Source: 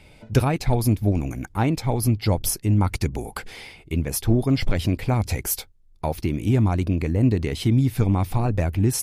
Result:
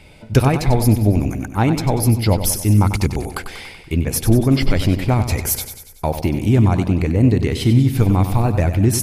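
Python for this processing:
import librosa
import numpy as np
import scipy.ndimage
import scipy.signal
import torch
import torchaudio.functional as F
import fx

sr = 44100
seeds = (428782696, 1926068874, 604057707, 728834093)

y = fx.echo_feedback(x, sr, ms=95, feedback_pct=55, wet_db=-10)
y = y * 10.0 ** (5.0 / 20.0)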